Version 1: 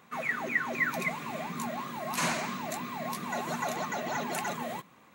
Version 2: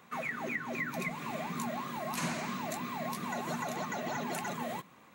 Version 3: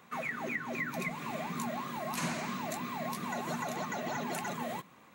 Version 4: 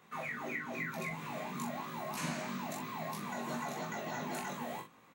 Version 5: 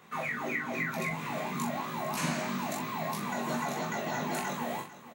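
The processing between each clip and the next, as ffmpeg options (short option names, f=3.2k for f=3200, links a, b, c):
-filter_complex "[0:a]acrossover=split=330[a][b];[b]acompressor=threshold=-35dB:ratio=4[c];[a][c]amix=inputs=2:normalize=0"
-af anull
-filter_complex "[0:a]flanger=delay=18.5:depth=2.3:speed=1,asplit=2[a][b];[b]adelay=43,volume=-7dB[c];[a][c]amix=inputs=2:normalize=0,volume=-1dB"
-af "aecho=1:1:447:0.158,volume=6dB"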